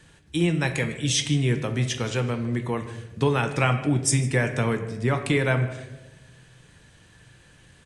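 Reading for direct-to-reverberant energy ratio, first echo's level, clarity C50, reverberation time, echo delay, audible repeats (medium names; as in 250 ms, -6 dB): 6.0 dB, -20.0 dB, 9.5 dB, 1.1 s, 155 ms, 1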